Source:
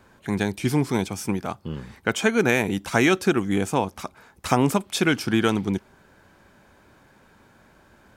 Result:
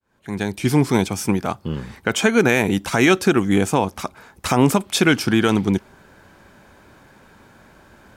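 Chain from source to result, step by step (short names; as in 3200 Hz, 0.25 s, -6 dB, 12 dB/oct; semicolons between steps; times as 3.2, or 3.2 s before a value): opening faded in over 0.83 s; limiter -11 dBFS, peak gain reduction 6.5 dB; gain +6 dB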